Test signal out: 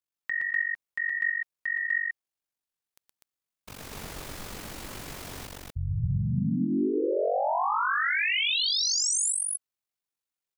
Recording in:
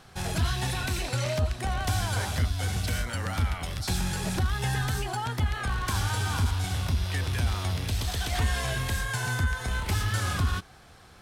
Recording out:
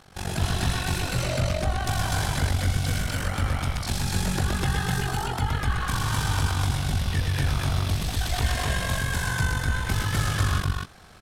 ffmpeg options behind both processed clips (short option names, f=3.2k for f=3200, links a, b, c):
-af "tremolo=f=47:d=0.947,aecho=1:1:119.5|247.8:0.631|0.891,volume=3.5dB"